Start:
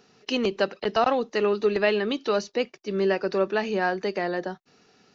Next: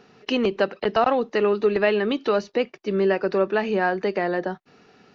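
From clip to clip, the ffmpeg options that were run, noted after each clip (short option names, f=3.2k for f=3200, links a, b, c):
-filter_complex "[0:a]bass=f=250:g=0,treble=f=4k:g=-12,asplit=2[a][b];[b]acompressor=threshold=-30dB:ratio=6,volume=1dB[c];[a][c]amix=inputs=2:normalize=0"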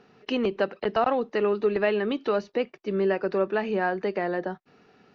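-af "highshelf=f=5.5k:g=-10,volume=-3.5dB"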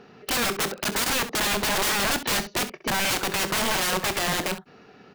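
-filter_complex "[0:a]aeval=exprs='(mod(21.1*val(0)+1,2)-1)/21.1':c=same,asplit=2[a][b];[b]aecho=0:1:25|66:0.211|0.224[c];[a][c]amix=inputs=2:normalize=0,volume=7dB"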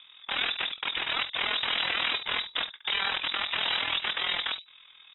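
-af "tremolo=f=41:d=0.71,lowpass=f=3.3k:t=q:w=0.5098,lowpass=f=3.3k:t=q:w=0.6013,lowpass=f=3.3k:t=q:w=0.9,lowpass=f=3.3k:t=q:w=2.563,afreqshift=-3900"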